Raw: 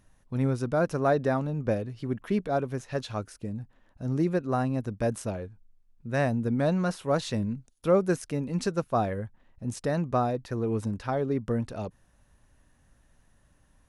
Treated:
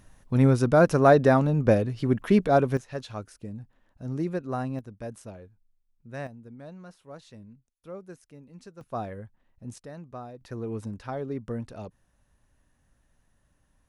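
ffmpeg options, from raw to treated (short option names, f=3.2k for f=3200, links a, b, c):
-af "asetnsamples=n=441:p=0,asendcmd='2.77 volume volume -3.5dB;4.79 volume volume -10dB;6.27 volume volume -18.5dB;8.81 volume volume -7dB;9.78 volume volume -14.5dB;10.41 volume volume -5dB',volume=7dB"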